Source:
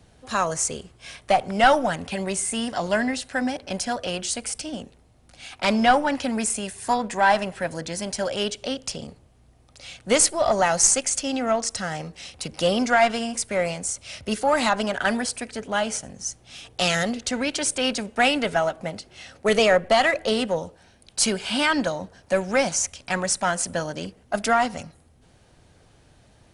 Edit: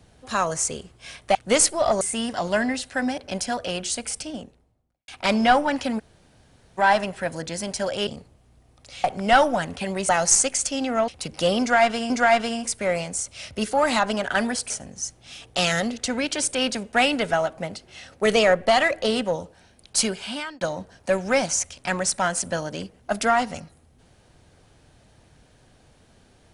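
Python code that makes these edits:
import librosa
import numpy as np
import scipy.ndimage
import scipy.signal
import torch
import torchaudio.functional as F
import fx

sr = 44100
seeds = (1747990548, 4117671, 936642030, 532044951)

y = fx.studio_fade_out(x, sr, start_s=4.53, length_s=0.94)
y = fx.edit(y, sr, fx.swap(start_s=1.35, length_s=1.05, other_s=9.95, other_length_s=0.66),
    fx.room_tone_fill(start_s=6.38, length_s=0.79, crossfade_s=0.02),
    fx.cut(start_s=8.46, length_s=0.52),
    fx.cut(start_s=11.6, length_s=0.68),
    fx.repeat(start_s=12.8, length_s=0.5, count=2),
    fx.cut(start_s=15.4, length_s=0.53),
    fx.fade_out_span(start_s=21.21, length_s=0.63), tone=tone)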